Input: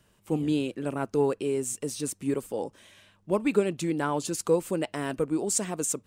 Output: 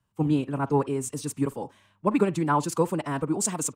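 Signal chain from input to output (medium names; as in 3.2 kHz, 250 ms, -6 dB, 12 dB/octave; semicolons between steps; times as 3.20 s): graphic EQ 125/250/500/1000 Hz +8/+3/-4/+10 dB; speakerphone echo 80 ms, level -18 dB; time stretch by phase-locked vocoder 0.62×; three bands expanded up and down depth 40%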